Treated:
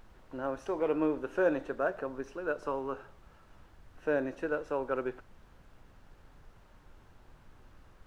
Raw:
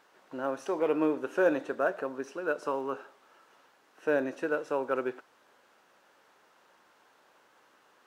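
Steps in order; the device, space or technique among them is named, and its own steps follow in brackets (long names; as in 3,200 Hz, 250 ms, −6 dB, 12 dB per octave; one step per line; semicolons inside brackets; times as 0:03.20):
car interior (parametric band 120 Hz +6 dB 0.95 octaves; high-shelf EQ 4,100 Hz −6.5 dB; brown noise bed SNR 19 dB)
level −2.5 dB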